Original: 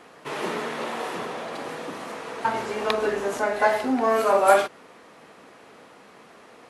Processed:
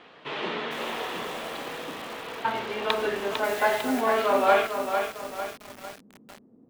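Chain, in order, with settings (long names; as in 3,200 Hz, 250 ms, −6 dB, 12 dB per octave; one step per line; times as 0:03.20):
low-pass filter sweep 3,400 Hz → 240 Hz, 0:04.51–0:05.59
in parallel at −6 dB: soft clipping −10 dBFS, distortion −17 dB
0:03.44–0:04.01: on the sum: bit-depth reduction 6 bits, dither triangular
feedback echo at a low word length 451 ms, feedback 55%, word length 5 bits, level −6 dB
level −7 dB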